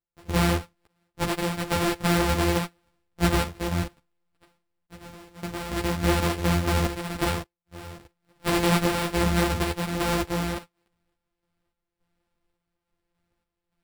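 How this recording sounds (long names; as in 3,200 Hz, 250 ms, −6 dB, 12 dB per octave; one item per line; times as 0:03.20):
a buzz of ramps at a fixed pitch in blocks of 256 samples
sample-and-hold tremolo 3.5 Hz, depth 95%
aliases and images of a low sample rate 6,400 Hz, jitter 0%
a shimmering, thickened sound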